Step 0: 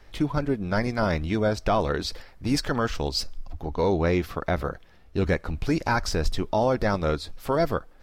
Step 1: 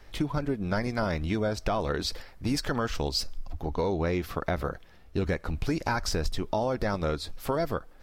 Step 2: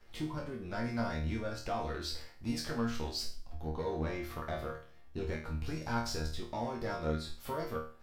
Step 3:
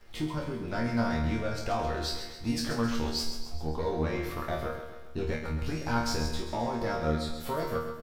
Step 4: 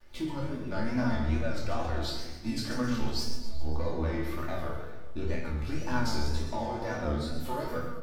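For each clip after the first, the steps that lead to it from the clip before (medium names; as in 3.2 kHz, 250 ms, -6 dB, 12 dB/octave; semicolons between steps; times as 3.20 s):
treble shelf 8.6 kHz +4 dB; compression, threshold -24 dBFS, peak gain reduction 6.5 dB
waveshaping leveller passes 1; chord resonator D#2 fifth, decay 0.42 s; trim +1.5 dB
crackle 230 per s -62 dBFS; feedback delay 133 ms, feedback 52%, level -8.5 dB; trim +5 dB
wow and flutter 120 cents; simulated room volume 2700 m³, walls furnished, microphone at 2.5 m; trim -4.5 dB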